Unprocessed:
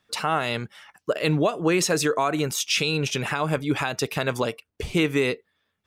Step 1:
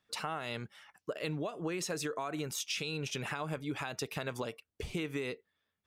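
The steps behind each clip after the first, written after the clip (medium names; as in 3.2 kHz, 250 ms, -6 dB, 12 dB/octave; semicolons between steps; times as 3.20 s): compression, threshold -24 dBFS, peak gain reduction 7.5 dB; trim -9 dB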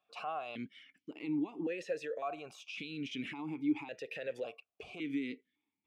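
peaking EQ 990 Hz -4.5 dB 2.1 oct; peak limiter -33.5 dBFS, peak gain reduction 9 dB; stepped vowel filter 1.8 Hz; trim +13.5 dB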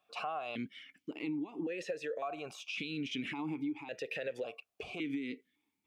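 compression 10:1, threshold -39 dBFS, peak gain reduction 13.5 dB; trim +5 dB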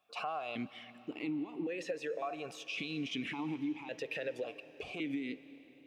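reverberation RT60 4.3 s, pre-delay 100 ms, DRR 15.5 dB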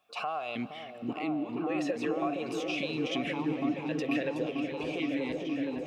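delay with an opening low-pass 467 ms, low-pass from 400 Hz, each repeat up 1 oct, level 0 dB; trim +4 dB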